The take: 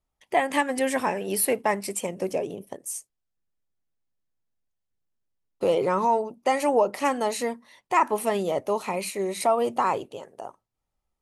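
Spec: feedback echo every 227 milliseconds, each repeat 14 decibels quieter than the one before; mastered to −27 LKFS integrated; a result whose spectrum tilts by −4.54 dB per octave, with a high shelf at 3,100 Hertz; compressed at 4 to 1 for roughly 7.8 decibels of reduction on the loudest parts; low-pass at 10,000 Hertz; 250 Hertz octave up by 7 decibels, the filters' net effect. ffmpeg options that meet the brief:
ffmpeg -i in.wav -af "lowpass=10000,equalizer=frequency=250:width_type=o:gain=8.5,highshelf=frequency=3100:gain=-5.5,acompressor=threshold=-25dB:ratio=4,aecho=1:1:227|454:0.2|0.0399,volume=3dB" out.wav

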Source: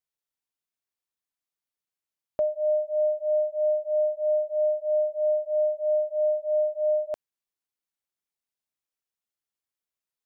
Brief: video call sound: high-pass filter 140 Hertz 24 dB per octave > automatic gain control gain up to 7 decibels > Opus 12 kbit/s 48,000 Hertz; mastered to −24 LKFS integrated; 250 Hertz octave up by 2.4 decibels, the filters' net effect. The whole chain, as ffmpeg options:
ffmpeg -i in.wav -af "highpass=frequency=140:width=0.5412,highpass=frequency=140:width=1.3066,equalizer=frequency=250:width_type=o:gain=3.5,dynaudnorm=maxgain=7dB,volume=1.5dB" -ar 48000 -c:a libopus -b:a 12k out.opus

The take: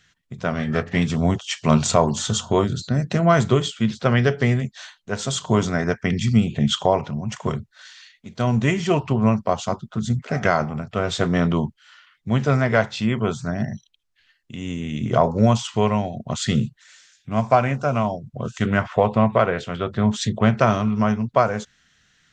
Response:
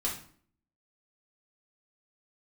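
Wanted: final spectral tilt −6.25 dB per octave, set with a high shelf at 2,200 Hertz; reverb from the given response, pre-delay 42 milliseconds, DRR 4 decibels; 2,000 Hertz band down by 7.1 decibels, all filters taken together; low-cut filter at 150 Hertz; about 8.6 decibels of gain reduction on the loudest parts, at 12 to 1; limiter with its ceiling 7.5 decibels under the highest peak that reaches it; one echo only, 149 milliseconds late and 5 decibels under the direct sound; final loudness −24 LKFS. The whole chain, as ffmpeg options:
-filter_complex "[0:a]highpass=150,equalizer=frequency=2000:width_type=o:gain=-7.5,highshelf=frequency=2200:gain=-4.5,acompressor=threshold=-21dB:ratio=12,alimiter=limit=-17.5dB:level=0:latency=1,aecho=1:1:149:0.562,asplit=2[link_01][link_02];[1:a]atrim=start_sample=2205,adelay=42[link_03];[link_02][link_03]afir=irnorm=-1:irlink=0,volume=-9dB[link_04];[link_01][link_04]amix=inputs=2:normalize=0,volume=2.5dB"

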